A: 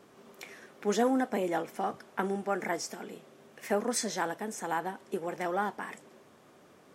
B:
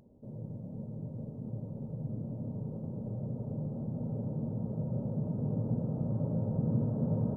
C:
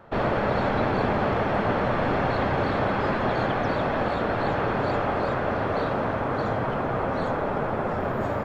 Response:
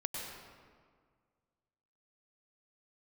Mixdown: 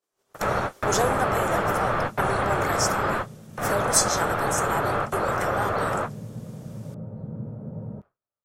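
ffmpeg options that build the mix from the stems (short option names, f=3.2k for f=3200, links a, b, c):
-filter_complex "[0:a]bass=f=250:g=-11,treble=f=4k:g=12,volume=2dB,asplit=2[a][b];[1:a]equalizer=f=210:w=6.8:g=7,adelay=650,volume=-4dB[c];[2:a]equalizer=f=1.3k:t=o:w=0.42:g=7.5,volume=-1dB[d];[b]apad=whole_len=372387[e];[d][e]sidechaingate=range=-38dB:threshold=-47dB:ratio=16:detection=peak[f];[a][c][f]amix=inputs=3:normalize=0,agate=range=-33dB:threshold=-39dB:ratio=3:detection=peak,equalizer=f=240:w=2.9:g=-7"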